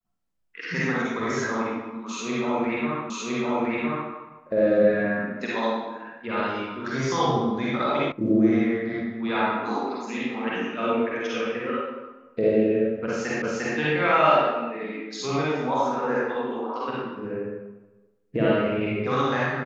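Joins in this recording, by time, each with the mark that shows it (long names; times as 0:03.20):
0:03.10: the same again, the last 1.01 s
0:08.12: cut off before it has died away
0:13.42: the same again, the last 0.35 s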